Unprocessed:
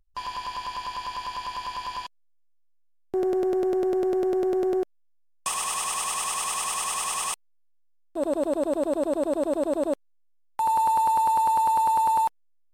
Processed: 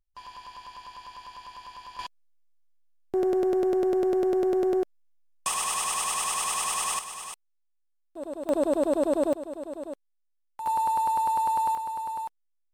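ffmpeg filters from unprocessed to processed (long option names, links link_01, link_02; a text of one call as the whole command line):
ffmpeg -i in.wav -af "asetnsamples=nb_out_samples=441:pad=0,asendcmd='1.99 volume volume 0dB;6.99 volume volume -10dB;8.49 volume volume 1dB;9.33 volume volume -11dB;10.66 volume volume -3.5dB;11.75 volume volume -11dB',volume=-11dB" out.wav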